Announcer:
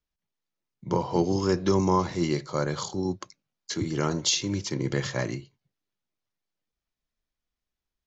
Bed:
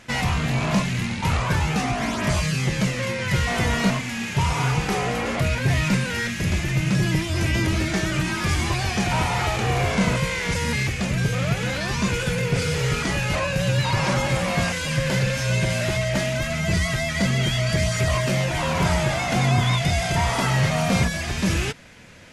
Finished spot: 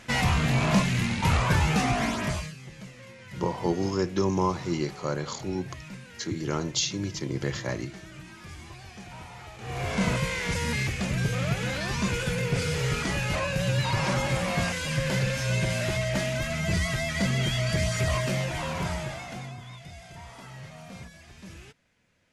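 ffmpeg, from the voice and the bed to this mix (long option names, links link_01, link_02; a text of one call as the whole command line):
ffmpeg -i stem1.wav -i stem2.wav -filter_complex "[0:a]adelay=2500,volume=-2.5dB[link_01];[1:a]volume=15.5dB,afade=type=out:start_time=1.98:duration=0.57:silence=0.1,afade=type=in:start_time=9.58:duration=0.48:silence=0.149624,afade=type=out:start_time=18.13:duration=1.44:silence=0.11885[link_02];[link_01][link_02]amix=inputs=2:normalize=0" out.wav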